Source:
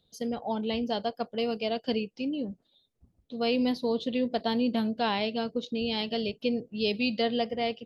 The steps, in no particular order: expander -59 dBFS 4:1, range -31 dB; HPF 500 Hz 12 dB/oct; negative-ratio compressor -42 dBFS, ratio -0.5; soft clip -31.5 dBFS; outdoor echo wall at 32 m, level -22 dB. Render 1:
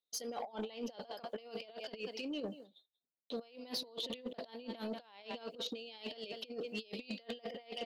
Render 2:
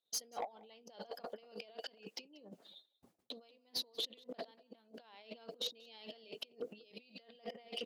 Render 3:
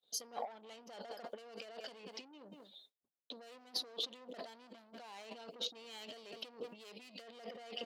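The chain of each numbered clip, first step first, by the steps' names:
HPF > expander > outdoor echo > negative-ratio compressor > soft clip; expander > negative-ratio compressor > HPF > soft clip > outdoor echo; soft clip > outdoor echo > negative-ratio compressor > HPF > expander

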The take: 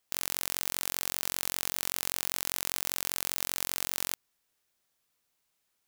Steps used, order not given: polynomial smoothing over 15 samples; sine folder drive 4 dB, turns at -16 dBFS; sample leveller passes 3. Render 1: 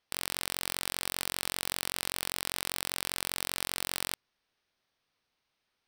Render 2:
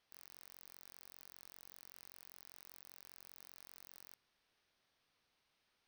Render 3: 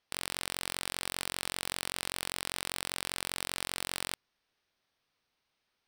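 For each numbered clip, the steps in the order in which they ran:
polynomial smoothing > sine folder > sample leveller; sine folder > sample leveller > polynomial smoothing; sample leveller > polynomial smoothing > sine folder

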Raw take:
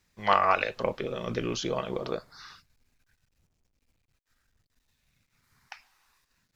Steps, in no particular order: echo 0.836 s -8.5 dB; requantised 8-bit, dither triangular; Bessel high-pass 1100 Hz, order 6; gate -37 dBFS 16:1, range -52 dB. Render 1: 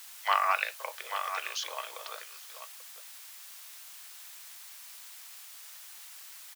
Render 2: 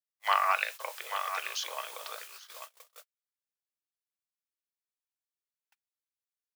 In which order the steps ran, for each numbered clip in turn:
echo > gate > requantised > Bessel high-pass; requantised > echo > gate > Bessel high-pass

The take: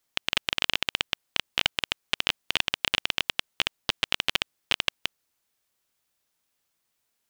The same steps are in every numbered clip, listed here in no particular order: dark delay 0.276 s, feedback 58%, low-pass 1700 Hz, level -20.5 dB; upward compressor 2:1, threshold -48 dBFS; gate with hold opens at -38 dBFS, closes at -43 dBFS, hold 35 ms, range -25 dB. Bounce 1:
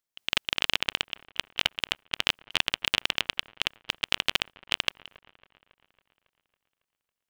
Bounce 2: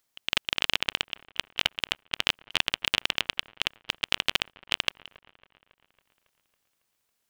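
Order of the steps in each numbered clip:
upward compressor > gate with hold > dark delay; gate with hold > upward compressor > dark delay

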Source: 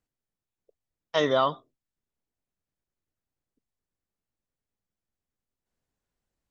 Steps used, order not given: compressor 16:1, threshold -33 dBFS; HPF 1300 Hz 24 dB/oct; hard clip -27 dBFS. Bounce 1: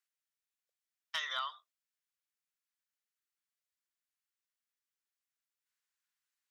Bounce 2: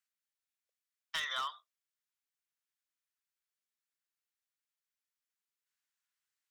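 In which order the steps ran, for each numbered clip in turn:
HPF > compressor > hard clip; HPF > hard clip > compressor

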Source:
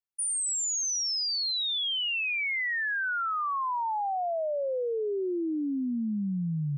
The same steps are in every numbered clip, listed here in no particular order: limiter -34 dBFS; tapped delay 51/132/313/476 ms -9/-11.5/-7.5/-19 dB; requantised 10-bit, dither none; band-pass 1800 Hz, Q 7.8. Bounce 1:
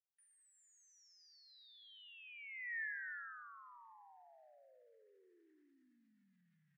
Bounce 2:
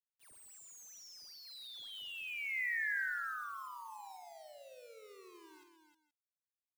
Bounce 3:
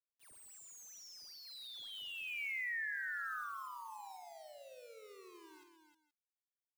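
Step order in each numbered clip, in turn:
requantised > tapped delay > limiter > band-pass; band-pass > limiter > requantised > tapped delay; band-pass > requantised > tapped delay > limiter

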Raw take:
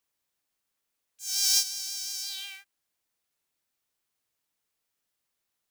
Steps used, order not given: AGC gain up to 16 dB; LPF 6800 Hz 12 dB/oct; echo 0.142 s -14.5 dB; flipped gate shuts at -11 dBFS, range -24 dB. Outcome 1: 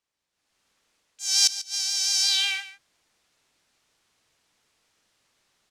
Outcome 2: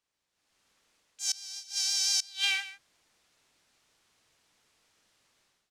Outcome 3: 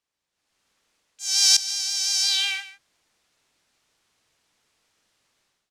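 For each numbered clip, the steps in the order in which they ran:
flipped gate > echo > AGC > LPF; AGC > echo > flipped gate > LPF; LPF > flipped gate > AGC > echo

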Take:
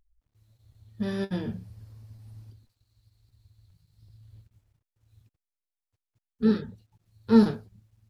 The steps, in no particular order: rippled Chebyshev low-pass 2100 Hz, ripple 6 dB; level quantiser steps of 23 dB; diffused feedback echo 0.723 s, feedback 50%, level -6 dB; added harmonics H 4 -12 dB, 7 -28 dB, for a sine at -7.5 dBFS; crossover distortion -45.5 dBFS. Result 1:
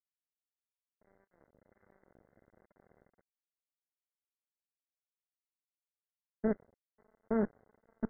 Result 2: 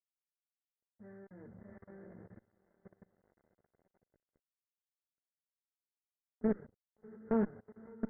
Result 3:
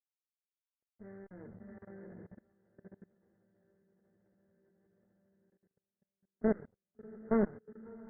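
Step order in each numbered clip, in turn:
diffused feedback echo > level quantiser > added harmonics > crossover distortion > rippled Chebyshev low-pass; diffused feedback echo > crossover distortion > level quantiser > rippled Chebyshev low-pass > added harmonics; crossover distortion > diffused feedback echo > added harmonics > level quantiser > rippled Chebyshev low-pass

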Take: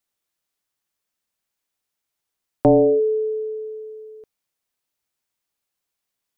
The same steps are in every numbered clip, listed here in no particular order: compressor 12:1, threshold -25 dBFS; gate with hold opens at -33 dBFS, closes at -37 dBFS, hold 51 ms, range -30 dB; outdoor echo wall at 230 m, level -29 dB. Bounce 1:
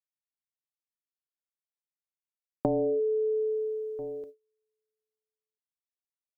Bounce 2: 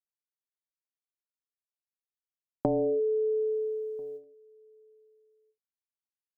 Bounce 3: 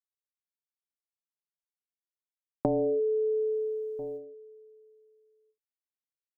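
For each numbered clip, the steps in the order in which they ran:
outdoor echo > gate with hold > compressor; gate with hold > compressor > outdoor echo; gate with hold > outdoor echo > compressor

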